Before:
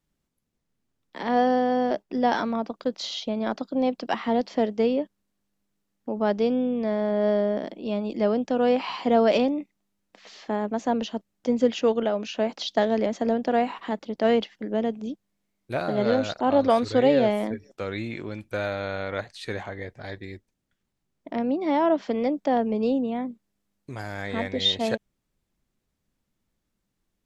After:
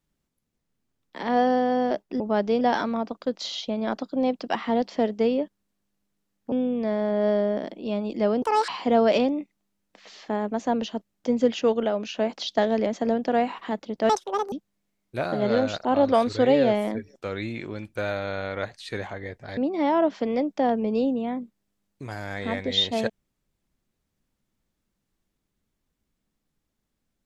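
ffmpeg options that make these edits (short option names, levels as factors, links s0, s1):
-filter_complex "[0:a]asplit=9[s0][s1][s2][s3][s4][s5][s6][s7][s8];[s0]atrim=end=2.202[s9];[s1]atrim=start=6.108:end=6.522[s10];[s2]atrim=start=2.198:end=6.112[s11];[s3]atrim=start=6.518:end=8.424[s12];[s4]atrim=start=8.42:end=8.88,asetpts=PTS-STARTPTS,asetrate=77175,aresample=44100[s13];[s5]atrim=start=8.876:end=14.294[s14];[s6]atrim=start=14.29:end=15.08,asetpts=PTS-STARTPTS,asetrate=81144,aresample=44100,atrim=end_sample=18934,asetpts=PTS-STARTPTS[s15];[s7]atrim=start=15.076:end=20.132[s16];[s8]atrim=start=21.448[s17];[s9][s10]acrossfade=d=0.004:c1=hsin:c2=hsin[s18];[s18][s11]acrossfade=d=0.004:c1=hsin:c2=hsin[s19];[s19][s12]acrossfade=d=0.004:c1=hsin:c2=hsin[s20];[s20][s13]acrossfade=d=0.004:c1=hsin:c2=hsin[s21];[s21][s14]acrossfade=d=0.004:c1=hsin:c2=hsin[s22];[s22][s15]acrossfade=d=0.004:c1=hsin:c2=hsin[s23];[s23][s16]acrossfade=d=0.004:c1=hsin:c2=hsin[s24];[s24][s17]acrossfade=d=0.004:c1=hsin:c2=hsin"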